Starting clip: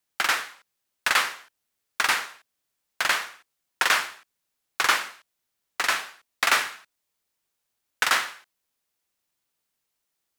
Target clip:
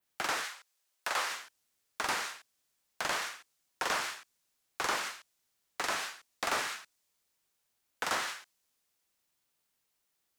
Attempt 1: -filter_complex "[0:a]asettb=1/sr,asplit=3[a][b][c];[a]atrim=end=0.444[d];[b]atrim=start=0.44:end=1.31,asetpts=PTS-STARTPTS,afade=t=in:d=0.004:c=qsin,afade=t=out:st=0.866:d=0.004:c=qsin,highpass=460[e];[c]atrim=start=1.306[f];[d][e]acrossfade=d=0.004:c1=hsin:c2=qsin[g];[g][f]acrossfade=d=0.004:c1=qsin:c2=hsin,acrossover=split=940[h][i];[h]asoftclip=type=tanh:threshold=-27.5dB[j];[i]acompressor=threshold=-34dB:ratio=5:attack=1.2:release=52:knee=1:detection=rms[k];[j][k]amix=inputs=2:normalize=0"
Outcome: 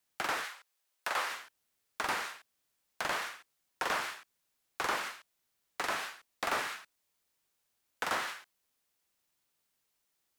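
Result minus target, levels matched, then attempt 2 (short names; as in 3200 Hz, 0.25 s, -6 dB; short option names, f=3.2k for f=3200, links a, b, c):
8000 Hz band -4.0 dB
-filter_complex "[0:a]asettb=1/sr,asplit=3[a][b][c];[a]atrim=end=0.444[d];[b]atrim=start=0.44:end=1.31,asetpts=PTS-STARTPTS,afade=t=in:d=0.004:c=qsin,afade=t=out:st=0.866:d=0.004:c=qsin,highpass=460[e];[c]atrim=start=1.306[f];[d][e]acrossfade=d=0.004:c1=hsin:c2=qsin[g];[g][f]acrossfade=d=0.004:c1=qsin:c2=hsin,acrossover=split=940[h][i];[h]asoftclip=type=tanh:threshold=-27.5dB[j];[i]acompressor=threshold=-34dB:ratio=5:attack=1.2:release=52:knee=1:detection=rms,adynamicequalizer=threshold=0.00158:dfrequency=6500:dqfactor=0.75:tfrequency=6500:tqfactor=0.75:attack=5:release=100:ratio=0.45:range=3:mode=boostabove:tftype=bell[k];[j][k]amix=inputs=2:normalize=0"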